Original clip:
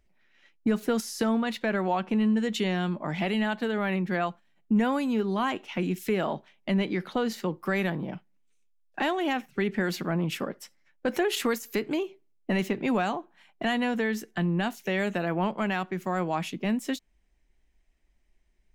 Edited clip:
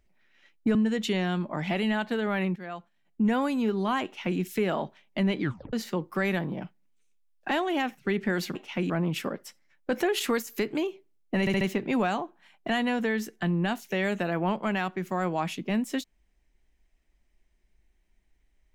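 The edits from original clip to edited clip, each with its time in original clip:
0:00.75–0:02.26: remove
0:04.07–0:04.89: fade in, from −15.5 dB
0:05.55–0:05.90: duplicate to 0:10.06
0:06.92: tape stop 0.32 s
0:12.56: stutter 0.07 s, 4 plays

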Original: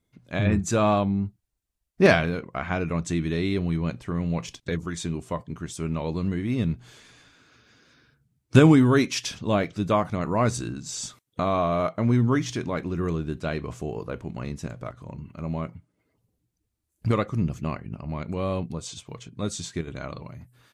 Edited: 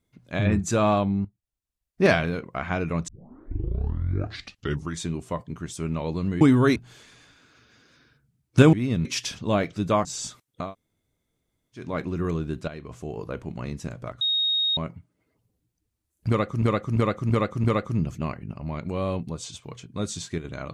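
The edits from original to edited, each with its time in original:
0:01.25–0:02.37: fade in, from −13.5 dB
0:03.08: tape start 1.91 s
0:06.41–0:06.73: swap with 0:08.70–0:09.05
0:10.05–0:10.84: remove
0:11.42–0:12.63: fill with room tone, crossfade 0.24 s
0:13.47–0:14.08: fade in, from −12.5 dB
0:15.00–0:15.56: beep over 3,740 Hz −20.5 dBFS
0:17.07–0:17.41: repeat, 5 plays

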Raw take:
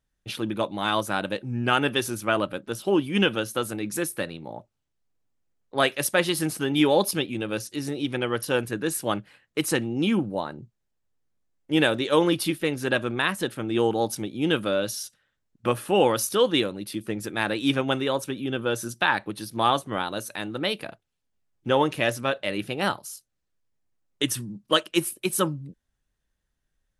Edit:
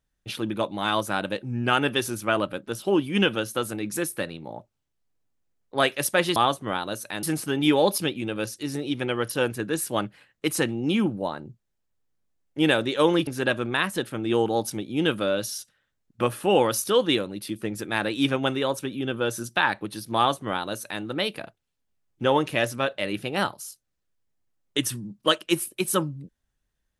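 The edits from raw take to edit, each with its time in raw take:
0:12.40–0:12.72: remove
0:19.61–0:20.48: duplicate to 0:06.36

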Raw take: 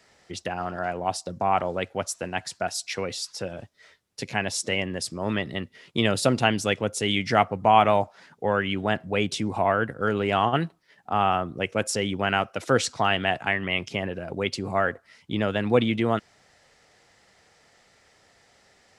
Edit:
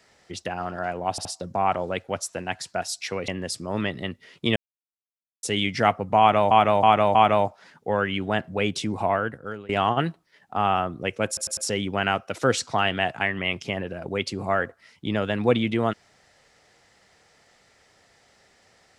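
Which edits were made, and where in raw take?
0:01.11: stutter 0.07 s, 3 plays
0:03.14–0:04.80: remove
0:06.08–0:06.95: silence
0:07.71–0:08.03: repeat, 4 plays
0:09.62–0:10.25: fade out, to −22 dB
0:11.83: stutter 0.10 s, 4 plays

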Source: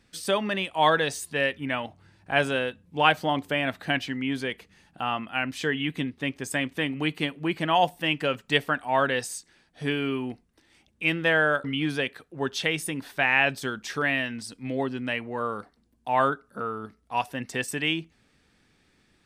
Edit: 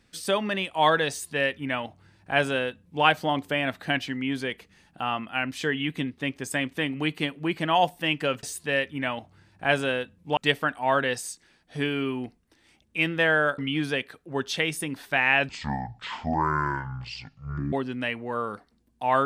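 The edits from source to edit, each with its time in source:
0:01.10–0:03.04: duplicate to 0:08.43
0:13.55–0:14.78: play speed 55%

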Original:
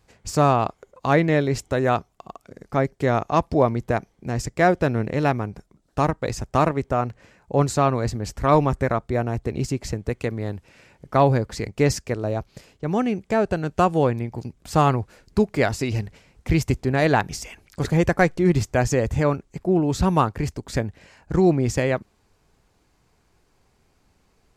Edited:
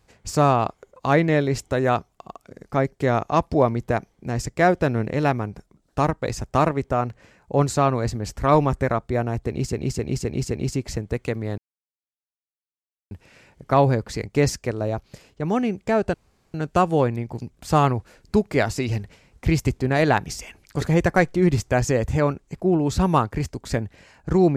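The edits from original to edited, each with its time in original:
0:09.46–0:09.72: repeat, 5 plays
0:10.54: splice in silence 1.53 s
0:13.57: splice in room tone 0.40 s

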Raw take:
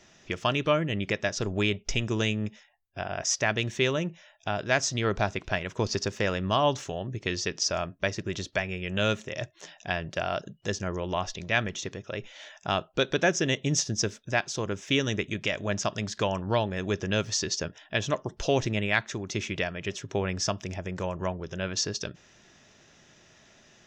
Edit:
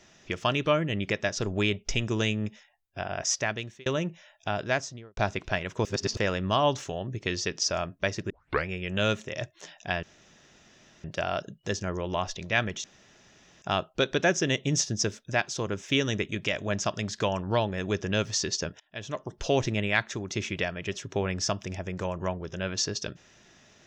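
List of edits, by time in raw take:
0:03.30–0:03.86: fade out
0:04.59–0:05.17: fade out and dull
0:05.85–0:06.17: reverse
0:08.30: tape start 0.37 s
0:10.03: splice in room tone 1.01 s
0:11.83–0:12.61: fill with room tone
0:17.79–0:18.52: fade in, from −23.5 dB

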